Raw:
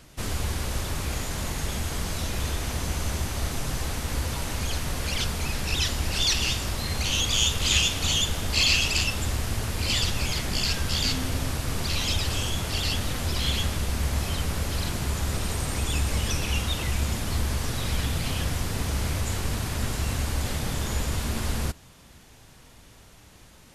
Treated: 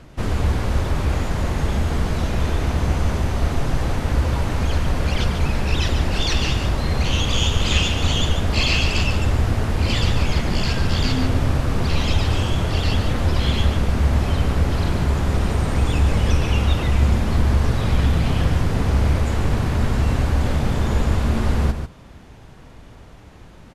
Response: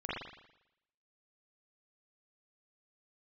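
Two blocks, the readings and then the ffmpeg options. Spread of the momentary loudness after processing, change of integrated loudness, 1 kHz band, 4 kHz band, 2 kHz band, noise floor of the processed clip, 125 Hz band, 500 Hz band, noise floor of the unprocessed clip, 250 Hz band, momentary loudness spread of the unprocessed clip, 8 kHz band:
4 LU, +6.0 dB, +7.5 dB, 0.0 dB, +3.5 dB, −43 dBFS, +9.5 dB, +9.0 dB, −51 dBFS, +9.5 dB, 8 LU, −5.5 dB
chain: -filter_complex "[0:a]lowpass=frequency=1200:poles=1,asplit=2[link_01][link_02];[link_02]aecho=0:1:144:0.398[link_03];[link_01][link_03]amix=inputs=2:normalize=0,volume=9dB"

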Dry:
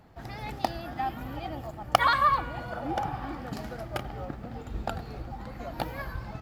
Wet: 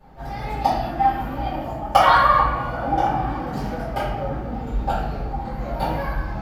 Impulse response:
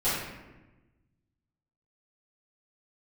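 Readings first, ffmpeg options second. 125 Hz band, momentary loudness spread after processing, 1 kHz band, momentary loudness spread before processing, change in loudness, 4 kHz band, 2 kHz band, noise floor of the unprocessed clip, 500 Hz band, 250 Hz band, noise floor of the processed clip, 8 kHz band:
+9.0 dB, 14 LU, +10.0 dB, 16 LU, +9.0 dB, +4.5 dB, +6.5 dB, −43 dBFS, +9.5 dB, +9.0 dB, −31 dBFS, can't be measured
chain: -filter_complex "[0:a]equalizer=frequency=810:width=1.4:gain=4[link_01];[1:a]atrim=start_sample=2205,asetrate=48510,aresample=44100[link_02];[link_01][link_02]afir=irnorm=-1:irlink=0,volume=-4.5dB"

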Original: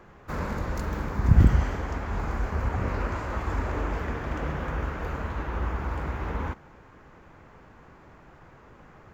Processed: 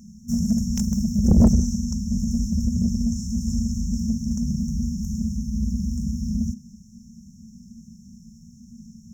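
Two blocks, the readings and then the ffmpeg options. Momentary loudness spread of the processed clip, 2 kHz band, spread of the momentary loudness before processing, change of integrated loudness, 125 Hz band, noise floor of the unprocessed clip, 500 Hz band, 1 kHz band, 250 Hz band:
9 LU, below −25 dB, 11 LU, +5.0 dB, +2.0 dB, −52 dBFS, −5.0 dB, below −15 dB, +12.5 dB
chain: -filter_complex "[0:a]afftfilt=real='re*(1-between(b*sr/4096,240,5300))':imag='im*(1-between(b*sr/4096,240,5300))':win_size=4096:overlap=0.75,equalizer=frequency=125:width_type=o:width=1:gain=-12,equalizer=frequency=250:width_type=o:width=1:gain=5,equalizer=frequency=500:width_type=o:width=1:gain=9,equalizer=frequency=1000:width_type=o:width=1:gain=6,equalizer=frequency=2000:width_type=o:width=1:gain=9,equalizer=frequency=4000:width_type=o:width=1:gain=7,asplit=2[link_01][link_02];[link_02]highpass=frequency=720:poles=1,volume=36dB,asoftclip=type=tanh:threshold=0dB[link_03];[link_01][link_03]amix=inputs=2:normalize=0,lowpass=frequency=1900:poles=1,volume=-6dB,volume=-3dB"

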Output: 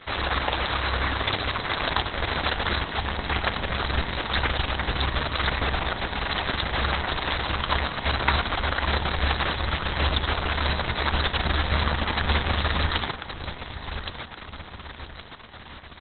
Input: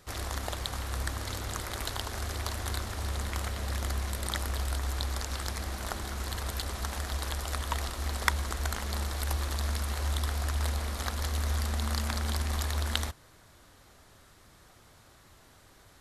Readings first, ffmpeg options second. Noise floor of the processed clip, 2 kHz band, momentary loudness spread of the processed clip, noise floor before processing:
−42 dBFS, +12.5 dB, 13 LU, −58 dBFS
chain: -filter_complex "[0:a]lowshelf=frequency=350:gain=-11,bandreject=frequency=117.8:width_type=h:width=4,bandreject=frequency=235.6:width_type=h:width=4,bandreject=frequency=353.4:width_type=h:width=4,bandreject=frequency=471.2:width_type=h:width=4,bandreject=frequency=589:width_type=h:width=4,bandreject=frequency=706.8:width_type=h:width=4,bandreject=frequency=824.6:width_type=h:width=4,bandreject=frequency=942.4:width_type=h:width=4,bandreject=frequency=1060.2:width_type=h:width=4,bandreject=frequency=1178:width_type=h:width=4,bandreject=frequency=1295.8:width_type=h:width=4,bandreject=frequency=1413.6:width_type=h:width=4,bandreject=frequency=1531.4:width_type=h:width=4,bandreject=frequency=1649.2:width_type=h:width=4,bandreject=frequency=1767:width_type=h:width=4,asplit=2[link_01][link_02];[link_02]aeval=exprs='0.596*sin(PI/2*5.62*val(0)/0.596)':channel_layout=same,volume=-4dB[link_03];[link_01][link_03]amix=inputs=2:normalize=0,aecho=1:1:1120|2240|3360|4480|5600:0.335|0.151|0.0678|0.0305|0.0137" -ar 48000 -c:a libopus -b:a 6k

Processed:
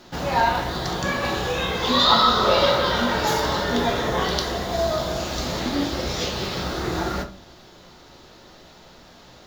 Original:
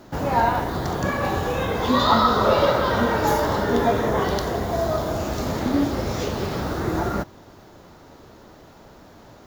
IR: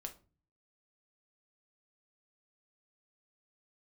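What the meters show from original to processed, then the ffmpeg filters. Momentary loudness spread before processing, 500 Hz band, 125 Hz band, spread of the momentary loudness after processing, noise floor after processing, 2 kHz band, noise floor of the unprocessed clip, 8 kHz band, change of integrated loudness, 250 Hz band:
8 LU, −1.5 dB, −3.0 dB, 10 LU, −48 dBFS, +2.0 dB, −48 dBFS, +4.0 dB, 0.0 dB, −3.0 dB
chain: -filter_complex "[0:a]equalizer=frequency=3900:width=0.61:gain=12.5[link_01];[1:a]atrim=start_sample=2205[link_02];[link_01][link_02]afir=irnorm=-1:irlink=0"

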